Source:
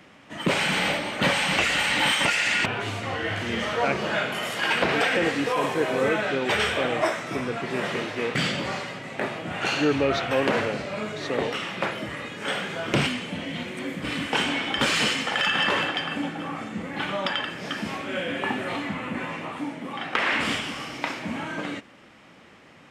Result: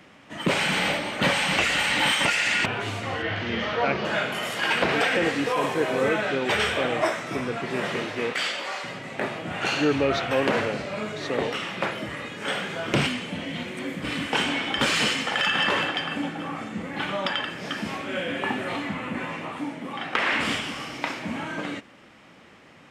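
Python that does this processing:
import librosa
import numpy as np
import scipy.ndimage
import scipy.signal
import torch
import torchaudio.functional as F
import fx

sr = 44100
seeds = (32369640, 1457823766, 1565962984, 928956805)

y = fx.lowpass(x, sr, hz=5100.0, slope=24, at=(3.22, 4.05))
y = fx.highpass(y, sr, hz=600.0, slope=12, at=(8.33, 8.84))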